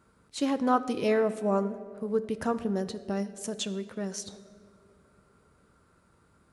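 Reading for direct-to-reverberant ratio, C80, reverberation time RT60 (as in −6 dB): 10.5 dB, 15.5 dB, 2.5 s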